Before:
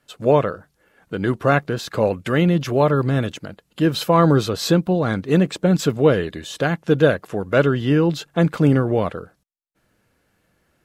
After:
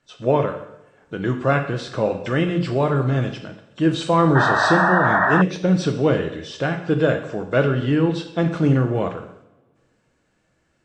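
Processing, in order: nonlinear frequency compression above 3400 Hz 1.5:1; two-slope reverb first 0.73 s, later 2.4 s, from -26 dB, DRR 4.5 dB; painted sound noise, 4.35–5.42, 580–1900 Hz -15 dBFS; gain -3 dB

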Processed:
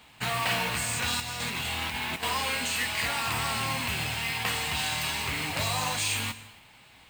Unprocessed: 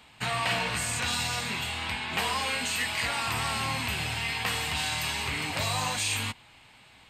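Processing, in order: 1.2–2.23 negative-ratio compressor -33 dBFS, ratio -0.5; modulation noise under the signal 13 dB; on a send: reverb, pre-delay 19 ms, DRR 14 dB

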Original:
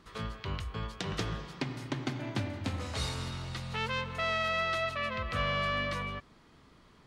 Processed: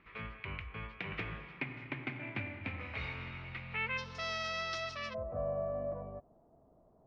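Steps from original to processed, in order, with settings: ladder low-pass 2500 Hz, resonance 75%, from 3.97 s 5800 Hz, from 5.13 s 720 Hz; gain +4 dB

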